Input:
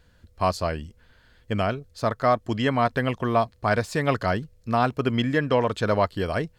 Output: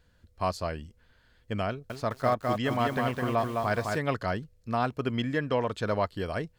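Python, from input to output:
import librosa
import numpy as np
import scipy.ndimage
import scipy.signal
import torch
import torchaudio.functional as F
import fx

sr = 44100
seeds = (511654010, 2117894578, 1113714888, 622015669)

y = fx.echo_crushed(x, sr, ms=208, feedback_pct=35, bits=7, wet_db=-3.0, at=(1.69, 3.98))
y = y * 10.0 ** (-6.0 / 20.0)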